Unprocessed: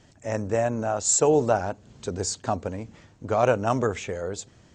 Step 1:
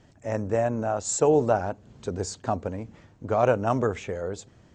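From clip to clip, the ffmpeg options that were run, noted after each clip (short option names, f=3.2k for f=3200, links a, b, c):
-af "highshelf=f=2.7k:g=-8"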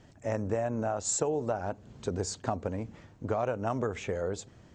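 -af "acompressor=threshold=-26dB:ratio=12"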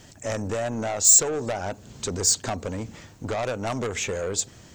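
-af "asoftclip=type=tanh:threshold=-28.5dB,crystalizer=i=4.5:c=0,volume=5.5dB"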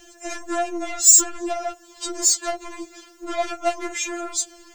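-filter_complex "[0:a]acrossover=split=140|1800|3900[a][b][c][d];[a]asoftclip=type=tanh:threshold=-36dB[e];[e][b][c][d]amix=inputs=4:normalize=0,afftfilt=real='re*4*eq(mod(b,16),0)':imag='im*4*eq(mod(b,16),0)':win_size=2048:overlap=0.75,volume=5.5dB"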